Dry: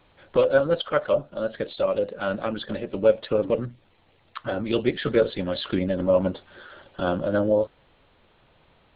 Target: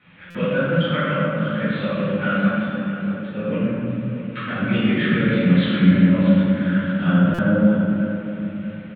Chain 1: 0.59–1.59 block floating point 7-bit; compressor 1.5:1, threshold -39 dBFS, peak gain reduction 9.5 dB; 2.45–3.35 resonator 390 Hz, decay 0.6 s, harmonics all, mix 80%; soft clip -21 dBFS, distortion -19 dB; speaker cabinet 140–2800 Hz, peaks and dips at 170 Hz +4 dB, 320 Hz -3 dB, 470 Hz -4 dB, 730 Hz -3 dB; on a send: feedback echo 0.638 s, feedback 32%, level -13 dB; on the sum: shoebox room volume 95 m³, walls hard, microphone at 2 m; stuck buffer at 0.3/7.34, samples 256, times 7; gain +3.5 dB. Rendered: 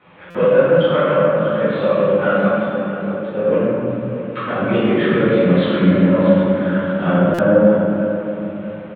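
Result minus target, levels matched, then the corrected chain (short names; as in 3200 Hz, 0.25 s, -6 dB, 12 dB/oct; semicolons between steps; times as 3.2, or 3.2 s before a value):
500 Hz band +7.5 dB
0.59–1.59 block floating point 7-bit; compressor 1.5:1, threshold -39 dBFS, peak gain reduction 9.5 dB; band shelf 620 Hz -12 dB 2.1 oct; 2.45–3.35 resonator 390 Hz, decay 0.6 s, harmonics all, mix 80%; soft clip -21 dBFS, distortion -28 dB; speaker cabinet 140–2800 Hz, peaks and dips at 170 Hz +4 dB, 320 Hz -3 dB, 470 Hz -4 dB, 730 Hz -3 dB; on a send: feedback echo 0.638 s, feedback 32%, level -13 dB; on the sum: shoebox room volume 95 m³, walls hard, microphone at 2 m; stuck buffer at 0.3/7.34, samples 256, times 7; gain +3.5 dB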